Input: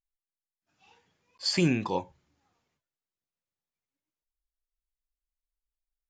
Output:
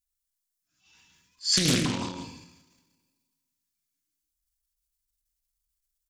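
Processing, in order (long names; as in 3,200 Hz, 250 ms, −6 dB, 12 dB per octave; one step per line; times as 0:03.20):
bass and treble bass +3 dB, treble +13 dB
comb filter 3 ms, depth 35%
single-tap delay 165 ms −6.5 dB
coupled-rooms reverb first 0.52 s, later 1.9 s, from −21 dB, DRR 2 dB
transient designer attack −9 dB, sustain +11 dB
flat-topped bell 560 Hz −11 dB
highs frequency-modulated by the lows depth 0.74 ms
level −3 dB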